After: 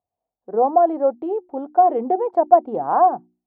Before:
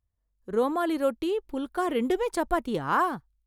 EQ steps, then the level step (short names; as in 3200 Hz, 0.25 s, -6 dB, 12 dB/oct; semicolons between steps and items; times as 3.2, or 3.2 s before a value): HPF 210 Hz 12 dB/oct; synth low-pass 740 Hz, resonance Q 8.4; notches 60/120/180/240/300/360 Hz; +1.0 dB